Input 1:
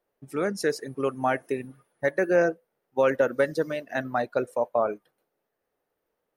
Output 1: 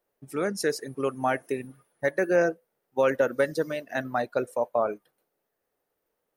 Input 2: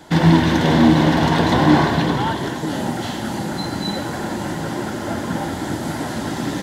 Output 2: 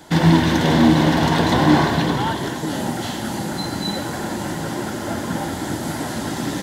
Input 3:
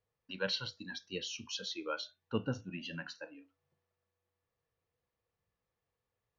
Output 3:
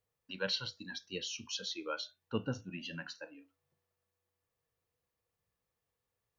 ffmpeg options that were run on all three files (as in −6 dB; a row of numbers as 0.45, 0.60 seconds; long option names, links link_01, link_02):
-af "highshelf=frequency=5900:gain=6,volume=-1dB"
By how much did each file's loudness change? −1.0, −1.0, 0.0 LU